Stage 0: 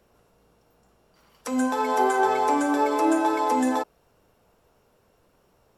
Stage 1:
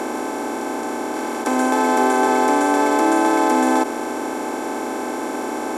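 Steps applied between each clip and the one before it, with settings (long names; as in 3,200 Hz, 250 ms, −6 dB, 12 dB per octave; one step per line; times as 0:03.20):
compressor on every frequency bin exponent 0.2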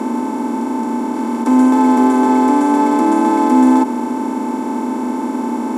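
low-shelf EQ 200 Hz +4.5 dB
notch comb filter 810 Hz
hollow resonant body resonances 230/890 Hz, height 17 dB, ringing for 50 ms
level −3.5 dB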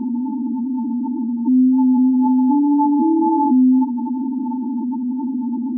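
expanding power law on the bin magnitudes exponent 4
level −1.5 dB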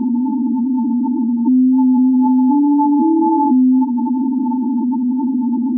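downward compressor 2.5 to 1, threshold −17 dBFS, peak gain reduction 4.5 dB
level +5.5 dB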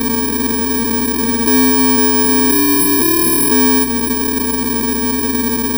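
samples in bit-reversed order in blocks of 64 samples
echo ahead of the sound 252 ms −12 dB
mains hum 60 Hz, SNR 18 dB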